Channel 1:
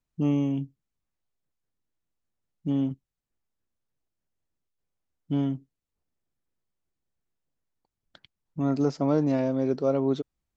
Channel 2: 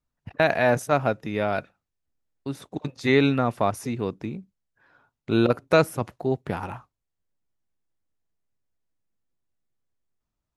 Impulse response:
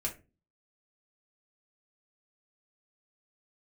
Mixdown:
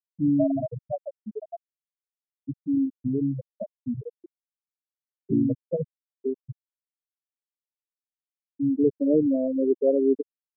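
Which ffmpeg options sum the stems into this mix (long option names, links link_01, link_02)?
-filter_complex "[0:a]adynamicequalizer=threshold=0.0112:dfrequency=400:dqfactor=1.2:tfrequency=400:tqfactor=1.2:attack=5:release=100:ratio=0.375:range=3:mode=boostabove:tftype=bell,volume=0dB[link_01];[1:a]equalizer=frequency=85:width_type=o:width=2.5:gain=3.5,acompressor=threshold=-22dB:ratio=3,asplit=2[link_02][link_03];[link_03]adelay=3.6,afreqshift=1.2[link_04];[link_02][link_04]amix=inputs=2:normalize=1,volume=2dB[link_05];[link_01][link_05]amix=inputs=2:normalize=0,afftfilt=real='re*gte(hypot(re,im),0.398)':imag='im*gte(hypot(re,im),0.398)':win_size=1024:overlap=0.75"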